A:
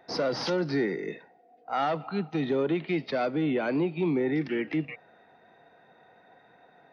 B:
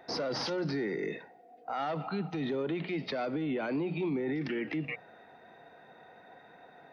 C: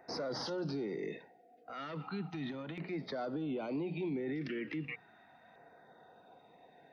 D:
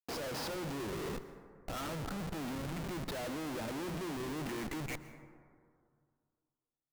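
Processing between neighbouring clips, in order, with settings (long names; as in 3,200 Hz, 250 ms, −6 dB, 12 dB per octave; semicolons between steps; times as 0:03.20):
mains-hum notches 60/120/180 Hz; brickwall limiter −29 dBFS, peak gain reduction 10.5 dB; level +3 dB
auto-filter notch saw down 0.36 Hz 360–3,500 Hz; level −4.5 dB
comparator with hysteresis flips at −45 dBFS; dense smooth reverb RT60 2.2 s, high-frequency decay 0.3×, pre-delay 105 ms, DRR 12 dB; level +1.5 dB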